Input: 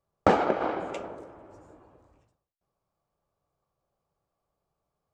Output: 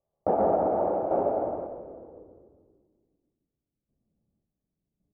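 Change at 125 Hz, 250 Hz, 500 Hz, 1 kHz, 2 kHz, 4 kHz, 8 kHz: −2.5 dB, 0.0 dB, +4.5 dB, +1.0 dB, below −15 dB, below −25 dB, below −20 dB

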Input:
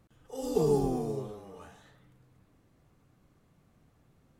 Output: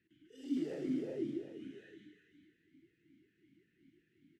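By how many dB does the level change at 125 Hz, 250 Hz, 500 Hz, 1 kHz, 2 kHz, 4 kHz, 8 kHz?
−17.5 dB, −3.0 dB, −13.5 dB, below −25 dB, +0.5 dB, −8.0 dB, below −15 dB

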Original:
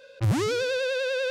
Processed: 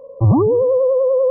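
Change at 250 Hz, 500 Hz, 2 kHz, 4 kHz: +12.0 dB, +13.0 dB, below −40 dB, below −40 dB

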